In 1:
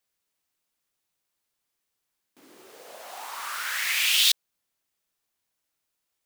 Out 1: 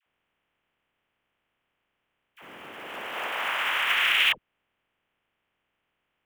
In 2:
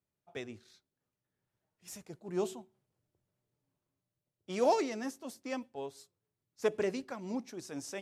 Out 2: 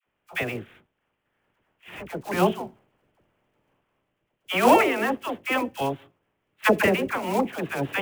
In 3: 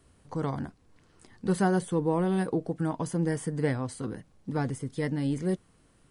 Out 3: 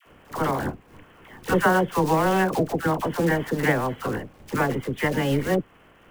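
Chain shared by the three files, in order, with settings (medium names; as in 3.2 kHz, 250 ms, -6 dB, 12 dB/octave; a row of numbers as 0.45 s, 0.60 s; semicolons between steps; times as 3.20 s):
spectral peaks clipped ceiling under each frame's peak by 16 dB; steep low-pass 3.2 kHz 72 dB/octave; in parallel at -2 dB: compression 16:1, threshold -36 dBFS; on the sum: short-mantissa float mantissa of 2-bit; phase dispersion lows, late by 62 ms, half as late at 740 Hz; normalise loudness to -24 LUFS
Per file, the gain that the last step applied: +5.0 dB, +10.5 dB, +5.0 dB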